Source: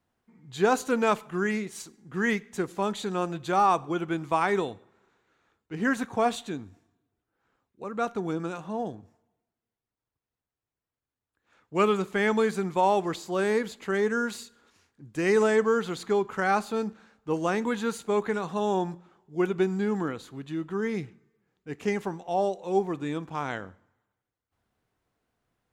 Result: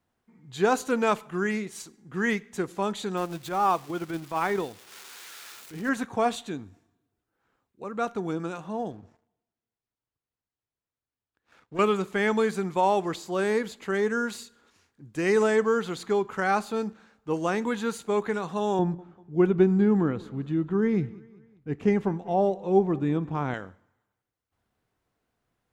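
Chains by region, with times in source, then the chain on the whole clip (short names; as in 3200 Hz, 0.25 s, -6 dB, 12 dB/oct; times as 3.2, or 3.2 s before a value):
3.17–5.89 switching spikes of -26.5 dBFS + LPF 3800 Hz 6 dB/oct + transient shaper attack -9 dB, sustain -5 dB
8.91–11.79 LPF 6300 Hz + compressor 1.5:1, threshold -60 dBFS + sample leveller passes 2
18.79–23.54 LPF 2200 Hz 6 dB/oct + low shelf 320 Hz +10.5 dB + feedback echo 0.194 s, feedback 49%, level -22.5 dB
whole clip: dry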